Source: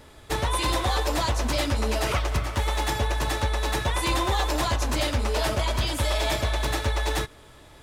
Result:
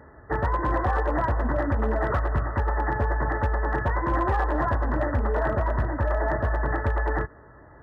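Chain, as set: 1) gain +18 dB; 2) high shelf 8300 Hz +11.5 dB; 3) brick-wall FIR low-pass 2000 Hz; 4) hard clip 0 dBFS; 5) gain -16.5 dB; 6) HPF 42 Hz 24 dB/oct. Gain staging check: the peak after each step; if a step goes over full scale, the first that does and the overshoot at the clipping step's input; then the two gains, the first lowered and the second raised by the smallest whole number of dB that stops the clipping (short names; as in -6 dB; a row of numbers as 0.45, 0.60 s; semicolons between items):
+2.5, +6.0, +3.5, 0.0, -16.5, -12.5 dBFS; step 1, 3.5 dB; step 1 +14 dB, step 5 -12.5 dB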